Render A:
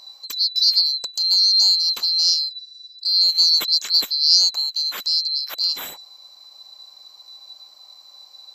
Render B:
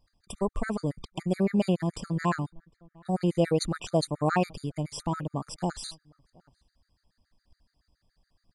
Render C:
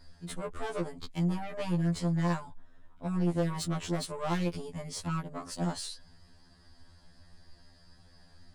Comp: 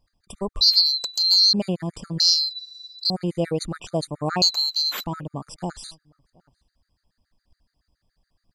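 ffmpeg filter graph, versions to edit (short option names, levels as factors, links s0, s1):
-filter_complex "[0:a]asplit=3[s0][s1][s2];[1:a]asplit=4[s3][s4][s5][s6];[s3]atrim=end=0.612[s7];[s0]atrim=start=0.608:end=1.532[s8];[s4]atrim=start=1.528:end=2.202[s9];[s1]atrim=start=2.198:end=3.102[s10];[s5]atrim=start=3.098:end=4.422[s11];[s2]atrim=start=4.418:end=5.042[s12];[s6]atrim=start=5.038[s13];[s7][s8]acrossfade=d=0.004:c1=hsin:c2=hsin[s14];[s14][s9]acrossfade=d=0.004:c1=hsin:c2=hsin[s15];[s15][s10]acrossfade=d=0.004:c1=hsin:c2=hsin[s16];[s16][s11]acrossfade=d=0.004:c1=hsin:c2=hsin[s17];[s17][s12]acrossfade=d=0.004:c1=hsin:c2=hsin[s18];[s18][s13]acrossfade=d=0.004:c1=hsin:c2=hsin"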